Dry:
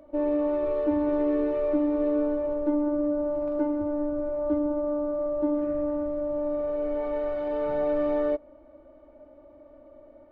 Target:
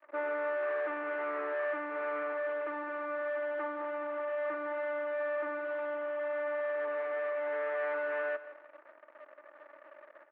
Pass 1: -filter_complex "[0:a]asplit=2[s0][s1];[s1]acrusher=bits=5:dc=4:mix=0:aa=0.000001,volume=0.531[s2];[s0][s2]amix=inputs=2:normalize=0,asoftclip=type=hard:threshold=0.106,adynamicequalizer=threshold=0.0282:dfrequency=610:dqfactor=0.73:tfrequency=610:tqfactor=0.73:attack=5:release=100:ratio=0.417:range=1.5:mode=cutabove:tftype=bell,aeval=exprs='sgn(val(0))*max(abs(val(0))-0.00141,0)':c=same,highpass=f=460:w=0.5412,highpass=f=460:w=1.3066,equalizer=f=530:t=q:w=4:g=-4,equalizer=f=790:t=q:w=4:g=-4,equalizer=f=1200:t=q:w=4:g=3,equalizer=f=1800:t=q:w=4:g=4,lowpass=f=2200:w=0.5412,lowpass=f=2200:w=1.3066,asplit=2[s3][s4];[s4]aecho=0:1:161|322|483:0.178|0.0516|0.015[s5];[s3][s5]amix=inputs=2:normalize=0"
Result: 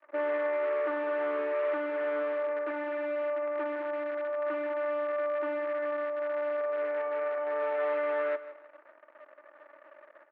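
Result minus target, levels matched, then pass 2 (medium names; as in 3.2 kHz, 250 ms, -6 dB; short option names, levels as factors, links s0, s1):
hard clipper: distortion -8 dB
-filter_complex "[0:a]asplit=2[s0][s1];[s1]acrusher=bits=5:dc=4:mix=0:aa=0.000001,volume=0.531[s2];[s0][s2]amix=inputs=2:normalize=0,asoftclip=type=hard:threshold=0.0473,adynamicequalizer=threshold=0.0282:dfrequency=610:dqfactor=0.73:tfrequency=610:tqfactor=0.73:attack=5:release=100:ratio=0.417:range=1.5:mode=cutabove:tftype=bell,aeval=exprs='sgn(val(0))*max(abs(val(0))-0.00141,0)':c=same,highpass=f=460:w=0.5412,highpass=f=460:w=1.3066,equalizer=f=530:t=q:w=4:g=-4,equalizer=f=790:t=q:w=4:g=-4,equalizer=f=1200:t=q:w=4:g=3,equalizer=f=1800:t=q:w=4:g=4,lowpass=f=2200:w=0.5412,lowpass=f=2200:w=1.3066,asplit=2[s3][s4];[s4]aecho=0:1:161|322|483:0.178|0.0516|0.015[s5];[s3][s5]amix=inputs=2:normalize=0"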